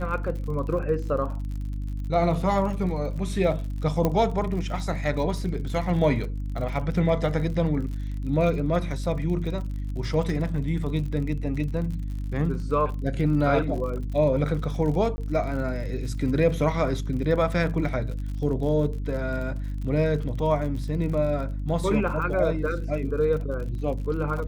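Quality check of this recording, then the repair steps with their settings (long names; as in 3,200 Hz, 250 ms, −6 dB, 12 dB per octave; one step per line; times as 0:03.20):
surface crackle 51 per second −34 dBFS
mains hum 50 Hz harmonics 6 −30 dBFS
0:04.05: click −11 dBFS
0:15.16–0:15.18: drop-out 20 ms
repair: click removal
hum removal 50 Hz, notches 6
repair the gap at 0:15.16, 20 ms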